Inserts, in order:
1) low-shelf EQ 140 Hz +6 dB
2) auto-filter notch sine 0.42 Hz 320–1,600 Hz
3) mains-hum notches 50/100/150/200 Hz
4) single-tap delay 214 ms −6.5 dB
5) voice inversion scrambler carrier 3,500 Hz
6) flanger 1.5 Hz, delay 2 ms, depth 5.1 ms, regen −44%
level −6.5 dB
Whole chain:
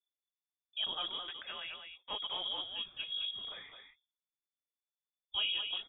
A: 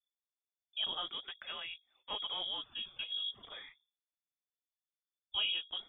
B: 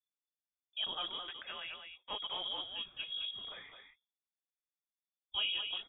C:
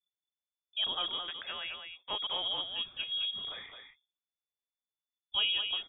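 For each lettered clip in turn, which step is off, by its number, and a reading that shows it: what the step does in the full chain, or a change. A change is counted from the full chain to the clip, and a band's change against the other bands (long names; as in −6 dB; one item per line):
4, change in momentary loudness spread +2 LU
1, change in integrated loudness −1.5 LU
6, change in integrated loudness +4.0 LU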